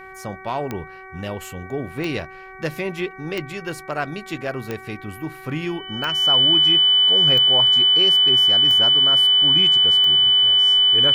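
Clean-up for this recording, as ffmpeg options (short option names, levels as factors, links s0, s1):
-af "adeclick=t=4,bandreject=f=379.4:t=h:w=4,bandreject=f=758.8:t=h:w=4,bandreject=f=1138.2:t=h:w=4,bandreject=f=1517.6:t=h:w=4,bandreject=f=1897:t=h:w=4,bandreject=f=2276.4:t=h:w=4,bandreject=f=3000:w=30"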